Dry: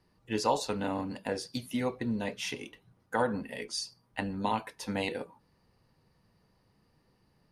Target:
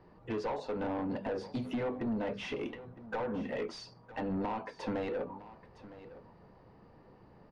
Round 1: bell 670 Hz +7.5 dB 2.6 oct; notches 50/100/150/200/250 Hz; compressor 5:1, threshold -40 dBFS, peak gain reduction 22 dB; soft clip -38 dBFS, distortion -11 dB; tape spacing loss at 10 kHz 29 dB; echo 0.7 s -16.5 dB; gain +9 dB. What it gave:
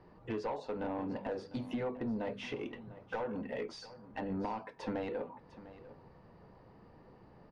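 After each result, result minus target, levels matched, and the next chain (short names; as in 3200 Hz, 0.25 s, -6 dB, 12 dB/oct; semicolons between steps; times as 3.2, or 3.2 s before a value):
echo 0.26 s early; compressor: peak gain reduction +5 dB
bell 670 Hz +7.5 dB 2.6 oct; notches 50/100/150/200/250 Hz; compressor 5:1, threshold -40 dBFS, peak gain reduction 22 dB; soft clip -38 dBFS, distortion -11 dB; tape spacing loss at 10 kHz 29 dB; echo 0.96 s -16.5 dB; gain +9 dB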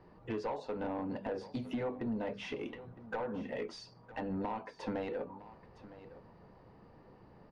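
compressor: peak gain reduction +5 dB
bell 670 Hz +7.5 dB 2.6 oct; notches 50/100/150/200/250 Hz; compressor 5:1, threshold -34 dBFS, peak gain reduction 17 dB; soft clip -38 dBFS, distortion -8 dB; tape spacing loss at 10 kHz 29 dB; echo 0.96 s -16.5 dB; gain +9 dB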